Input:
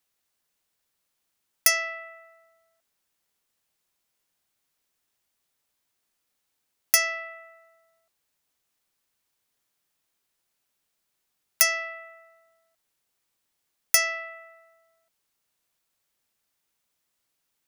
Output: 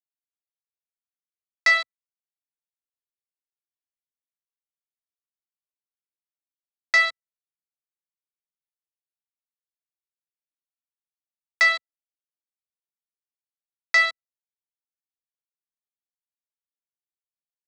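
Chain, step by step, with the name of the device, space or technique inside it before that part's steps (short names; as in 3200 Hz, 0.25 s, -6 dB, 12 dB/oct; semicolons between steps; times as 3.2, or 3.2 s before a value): hand-held game console (bit-crush 4-bit; speaker cabinet 490–4800 Hz, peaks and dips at 700 Hz +5 dB, 1300 Hz +9 dB, 2100 Hz +5 dB, 4100 Hz +4 dB); ripple EQ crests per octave 1, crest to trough 10 dB; gain -1 dB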